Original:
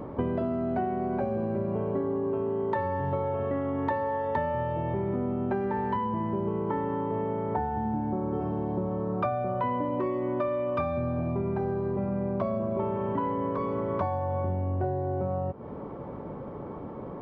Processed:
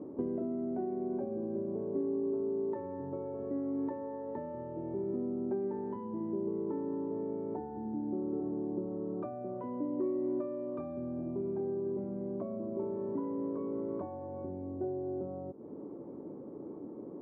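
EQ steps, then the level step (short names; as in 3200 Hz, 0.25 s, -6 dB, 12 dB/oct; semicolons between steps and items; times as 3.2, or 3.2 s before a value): band-pass 320 Hz, Q 2.8; 0.0 dB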